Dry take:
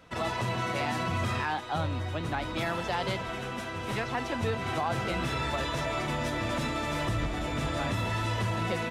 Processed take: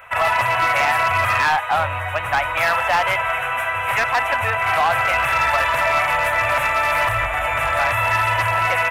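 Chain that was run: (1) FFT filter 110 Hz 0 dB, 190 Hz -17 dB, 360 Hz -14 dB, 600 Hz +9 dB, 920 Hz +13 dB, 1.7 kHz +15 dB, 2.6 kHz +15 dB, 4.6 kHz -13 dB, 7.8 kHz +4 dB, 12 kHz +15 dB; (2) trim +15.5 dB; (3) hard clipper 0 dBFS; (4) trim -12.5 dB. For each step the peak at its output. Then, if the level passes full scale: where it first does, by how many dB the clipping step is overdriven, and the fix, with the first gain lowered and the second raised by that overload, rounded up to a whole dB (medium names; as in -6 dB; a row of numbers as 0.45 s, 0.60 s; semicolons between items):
-6.5 dBFS, +9.0 dBFS, 0.0 dBFS, -12.5 dBFS; step 2, 9.0 dB; step 2 +6.5 dB, step 4 -3.5 dB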